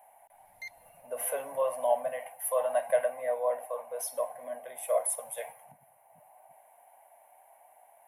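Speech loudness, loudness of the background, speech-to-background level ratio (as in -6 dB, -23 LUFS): -32.0 LUFS, -45.5 LUFS, 13.5 dB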